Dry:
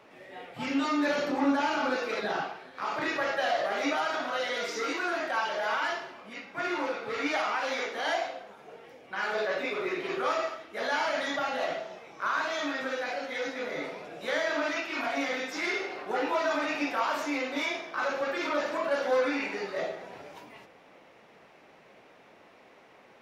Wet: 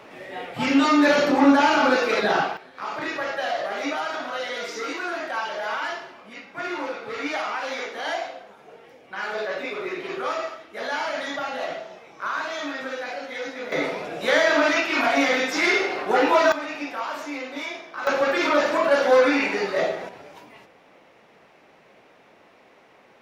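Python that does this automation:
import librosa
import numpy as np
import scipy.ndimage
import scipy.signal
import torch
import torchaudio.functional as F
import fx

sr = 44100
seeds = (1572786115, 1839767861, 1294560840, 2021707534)

y = fx.gain(x, sr, db=fx.steps((0.0, 10.0), (2.57, 1.5), (13.72, 10.5), (16.52, -1.0), (18.07, 9.5), (20.09, 2.0)))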